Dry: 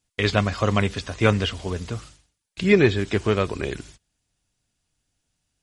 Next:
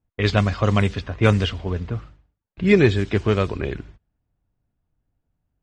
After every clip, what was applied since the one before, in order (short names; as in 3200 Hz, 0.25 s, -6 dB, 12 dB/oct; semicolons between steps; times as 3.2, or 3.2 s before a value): low-pass opened by the level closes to 1100 Hz, open at -14 dBFS; low shelf 170 Hz +6 dB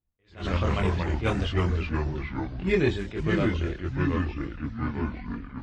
echoes that change speed 86 ms, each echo -3 st, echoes 3; chorus voices 6, 0.39 Hz, delay 24 ms, depth 3 ms; attack slew limiter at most 190 dB/s; gain -4.5 dB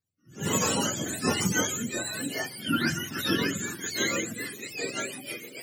spectrum mirrored in octaves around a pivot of 760 Hz; rotary speaker horn 1.2 Hz, later 6.3 Hz, at 4.14; gain +4.5 dB